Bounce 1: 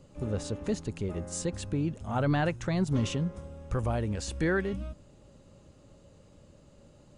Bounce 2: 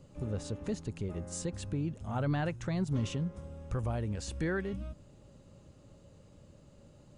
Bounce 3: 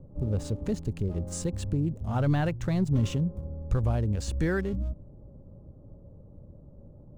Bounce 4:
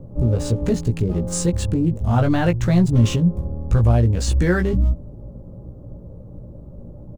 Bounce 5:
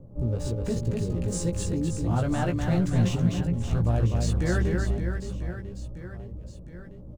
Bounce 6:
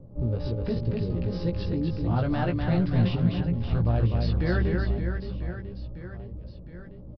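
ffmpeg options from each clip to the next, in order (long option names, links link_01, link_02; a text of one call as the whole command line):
ffmpeg -i in.wav -filter_complex "[0:a]equalizer=frequency=120:width_type=o:width=1.5:gain=3.5,asplit=2[link_01][link_02];[link_02]acompressor=threshold=-36dB:ratio=6,volume=-1dB[link_03];[link_01][link_03]amix=inputs=2:normalize=0,volume=-8dB" out.wav
ffmpeg -i in.wav -filter_complex "[0:a]lowshelf=frequency=84:gain=9.5,acrossover=split=900[link_01][link_02];[link_02]aeval=exprs='sgn(val(0))*max(abs(val(0))-0.00141,0)':channel_layout=same[link_03];[link_01][link_03]amix=inputs=2:normalize=0,volume=4.5dB" out.wav
ffmpeg -i in.wav -filter_complex "[0:a]asplit=2[link_01][link_02];[link_02]alimiter=limit=-23.5dB:level=0:latency=1:release=35,volume=3dB[link_03];[link_01][link_03]amix=inputs=2:normalize=0,asplit=2[link_04][link_05];[link_05]adelay=17,volume=-4dB[link_06];[link_04][link_06]amix=inputs=2:normalize=0,volume=2.5dB" out.wav
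ffmpeg -i in.wav -af "aecho=1:1:250|575|997.5|1547|2261:0.631|0.398|0.251|0.158|0.1,volume=-9dB" out.wav
ffmpeg -i in.wav -af "aresample=11025,aresample=44100" out.wav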